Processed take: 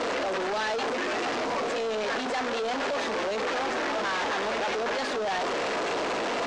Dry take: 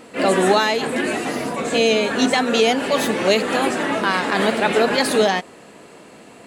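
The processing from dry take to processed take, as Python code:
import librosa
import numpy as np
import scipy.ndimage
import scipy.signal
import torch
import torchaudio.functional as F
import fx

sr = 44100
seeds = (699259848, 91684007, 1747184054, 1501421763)

y = np.sign(x) * np.sqrt(np.mean(np.square(x)))
y = scipy.signal.sosfilt(scipy.signal.butter(2, 430.0, 'highpass', fs=sr, output='sos'), y)
y = fx.high_shelf(y, sr, hz=3200.0, db=-11.5)
y = 10.0 ** (-22.5 / 20.0) * np.tanh(y / 10.0 ** (-22.5 / 20.0))
y = scipy.signal.sosfilt(scipy.signal.butter(4, 6500.0, 'lowpass', fs=sr, output='sos'), y)
y = y * 10.0 ** (-1.5 / 20.0)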